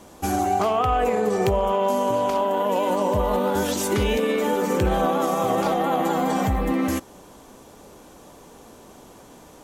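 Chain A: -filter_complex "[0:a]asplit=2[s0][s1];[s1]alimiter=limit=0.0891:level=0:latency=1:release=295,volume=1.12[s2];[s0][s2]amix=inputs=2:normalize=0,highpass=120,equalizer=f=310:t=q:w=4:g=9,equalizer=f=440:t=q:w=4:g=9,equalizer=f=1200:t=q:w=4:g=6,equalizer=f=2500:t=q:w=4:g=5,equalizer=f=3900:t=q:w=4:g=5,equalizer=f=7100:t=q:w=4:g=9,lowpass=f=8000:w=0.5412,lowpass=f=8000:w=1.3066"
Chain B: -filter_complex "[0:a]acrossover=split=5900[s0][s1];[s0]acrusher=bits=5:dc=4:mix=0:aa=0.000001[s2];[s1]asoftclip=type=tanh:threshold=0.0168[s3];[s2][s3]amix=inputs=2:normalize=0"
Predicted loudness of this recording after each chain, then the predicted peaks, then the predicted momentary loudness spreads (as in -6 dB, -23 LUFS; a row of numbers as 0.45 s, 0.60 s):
-14.5 LUFS, -21.5 LUFS; -2.0 dBFS, -11.0 dBFS; 4 LU, 2 LU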